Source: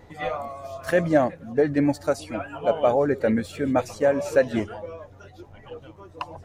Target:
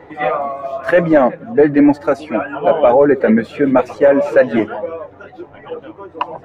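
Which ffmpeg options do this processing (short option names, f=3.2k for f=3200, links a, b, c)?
-filter_complex "[0:a]acrossover=split=170 2800:gain=0.141 1 0.1[a][b][c];[a][b][c]amix=inputs=3:normalize=0,apsyclip=16.5dB,flanger=delay=2.1:depth=4.9:regen=-53:speed=0.99:shape=sinusoidal"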